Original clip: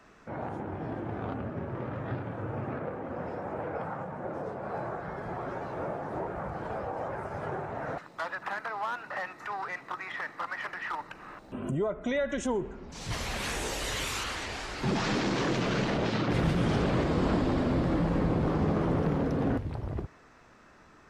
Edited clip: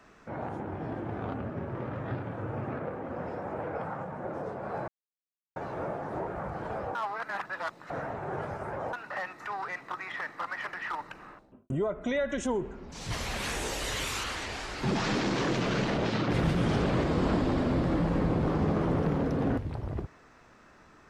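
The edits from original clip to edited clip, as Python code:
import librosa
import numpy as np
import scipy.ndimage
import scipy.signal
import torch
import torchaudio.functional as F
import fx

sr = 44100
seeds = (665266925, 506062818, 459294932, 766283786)

y = fx.studio_fade_out(x, sr, start_s=11.12, length_s=0.58)
y = fx.edit(y, sr, fx.silence(start_s=4.88, length_s=0.68),
    fx.reverse_span(start_s=6.95, length_s=1.98), tone=tone)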